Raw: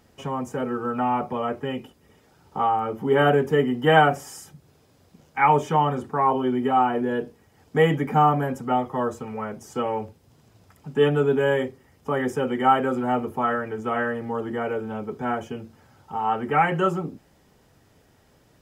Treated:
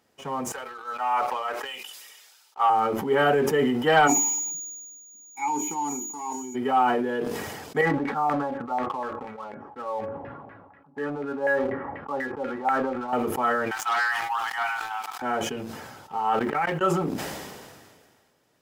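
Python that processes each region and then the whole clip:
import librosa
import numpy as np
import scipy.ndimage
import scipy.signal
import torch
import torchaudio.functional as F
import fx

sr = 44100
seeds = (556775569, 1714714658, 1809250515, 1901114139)

y = fx.chain(x, sr, fx.highpass(hz=890.0, slope=12),
    fx.band_widen(depth_pct=100), at=(0.52, 2.7))
y = fx.vowel_filter(y, sr, vowel='u', at=(4.06, 6.54), fade=0.02)
y = fx.dmg_tone(y, sr, hz=6800.0, level_db=-42.0, at=(4.06, 6.54), fade=0.02)
y = fx.chain(y, sr, fx.air_absorb(metres=390.0),
    fx.comb_fb(f0_hz=280.0, decay_s=0.15, harmonics='all', damping=0.0, mix_pct=80),
    fx.filter_lfo_lowpass(shape='saw_down', hz=4.1, low_hz=760.0, high_hz=2000.0, q=3.3), at=(7.81, 13.13))
y = fx.chain(y, sr, fx.brickwall_highpass(low_hz=700.0),
    fx.leveller(passes=2), at=(13.71, 15.22))
y = fx.chain(y, sr, fx.law_mismatch(coded='A'),
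    fx.high_shelf(hz=4700.0, db=-7.0),
    fx.level_steps(step_db=23), at=(16.39, 16.81))
y = fx.highpass(y, sr, hz=380.0, slope=6)
y = fx.leveller(y, sr, passes=1)
y = fx.sustainer(y, sr, db_per_s=32.0)
y = F.gain(torch.from_numpy(y), -4.0).numpy()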